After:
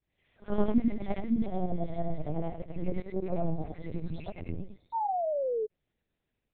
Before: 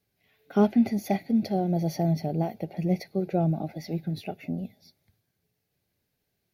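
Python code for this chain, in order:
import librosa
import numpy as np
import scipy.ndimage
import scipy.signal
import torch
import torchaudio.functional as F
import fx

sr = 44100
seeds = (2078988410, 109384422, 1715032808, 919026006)

y = fx.frame_reverse(x, sr, frame_ms=223.0)
y = fx.spec_paint(y, sr, seeds[0], shape='fall', start_s=4.93, length_s=0.73, low_hz=420.0, high_hz=930.0, level_db=-30.0)
y = fx.lpc_vocoder(y, sr, seeds[1], excitation='pitch_kept', order=8)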